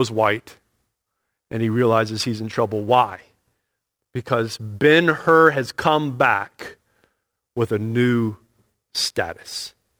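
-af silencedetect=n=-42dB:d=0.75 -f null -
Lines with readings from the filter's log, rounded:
silence_start: 0.57
silence_end: 1.51 | silence_duration: 0.94
silence_start: 3.24
silence_end: 4.15 | silence_duration: 0.92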